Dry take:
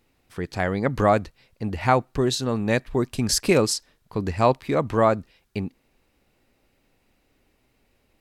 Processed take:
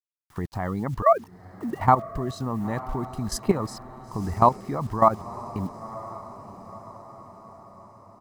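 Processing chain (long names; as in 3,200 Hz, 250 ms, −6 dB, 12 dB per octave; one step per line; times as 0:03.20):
0:01.02–0:01.80: three sine waves on the formant tracks
noise gate with hold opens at −49 dBFS
high shelf with overshoot 1,800 Hz −11 dB, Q 1.5
comb filter 1 ms, depth 50%
in parallel at +1 dB: downward compressor 8 to 1, threshold −25 dBFS, peak gain reduction 14.5 dB
on the sum: reverb reduction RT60 0.57 s
bit-depth reduction 8 bits, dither none
output level in coarse steps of 14 dB
on a send: feedback delay with all-pass diffusion 979 ms, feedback 53%, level −15.5 dB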